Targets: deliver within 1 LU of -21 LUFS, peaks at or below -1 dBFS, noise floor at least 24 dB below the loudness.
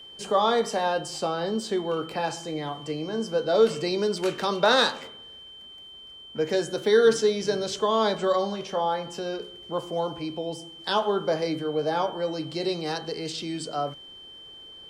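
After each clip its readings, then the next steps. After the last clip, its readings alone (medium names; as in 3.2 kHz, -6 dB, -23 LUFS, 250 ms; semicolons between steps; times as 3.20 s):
steady tone 3.1 kHz; tone level -43 dBFS; loudness -26.5 LUFS; peak level -7.5 dBFS; loudness target -21.0 LUFS
-> band-stop 3.1 kHz, Q 30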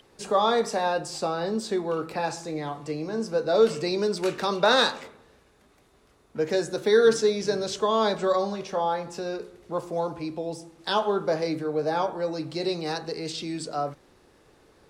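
steady tone not found; loudness -26.5 LUFS; peak level -7.5 dBFS; loudness target -21.0 LUFS
-> trim +5.5 dB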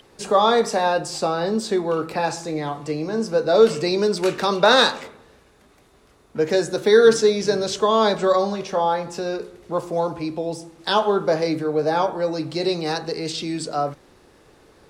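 loudness -21.0 LUFS; peak level -2.0 dBFS; noise floor -55 dBFS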